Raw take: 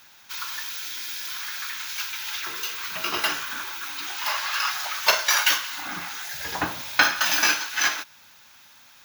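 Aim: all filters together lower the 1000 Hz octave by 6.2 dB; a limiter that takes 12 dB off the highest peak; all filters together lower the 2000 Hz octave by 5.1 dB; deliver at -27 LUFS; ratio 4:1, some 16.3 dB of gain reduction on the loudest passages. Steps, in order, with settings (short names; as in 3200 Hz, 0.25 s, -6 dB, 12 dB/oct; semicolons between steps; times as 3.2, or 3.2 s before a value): bell 1000 Hz -6.5 dB; bell 2000 Hz -4.5 dB; compressor 4:1, threshold -37 dBFS; gain +12 dB; limiter -19 dBFS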